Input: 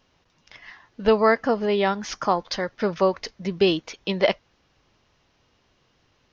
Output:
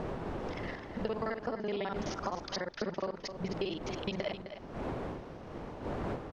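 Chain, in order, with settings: time reversed locally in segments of 42 ms; wind noise 570 Hz -34 dBFS; compression 6:1, threshold -34 dBFS, peak gain reduction 19 dB; delay 260 ms -10 dB

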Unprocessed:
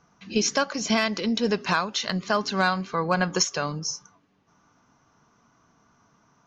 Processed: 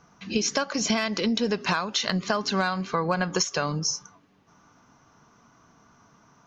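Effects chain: compression 6:1, threshold -26 dBFS, peak gain reduction 9 dB; trim +4.5 dB

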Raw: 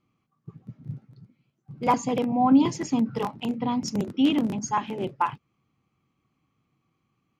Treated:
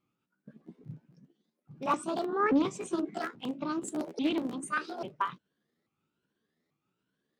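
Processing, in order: sawtooth pitch modulation +9.5 st, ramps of 838 ms; bass shelf 120 Hz -7.5 dB; loudspeaker Doppler distortion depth 0.31 ms; trim -5.5 dB

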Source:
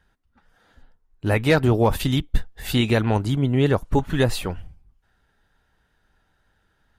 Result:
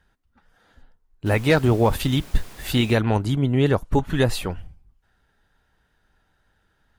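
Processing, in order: 1.25–2.94 s: added noise pink -44 dBFS

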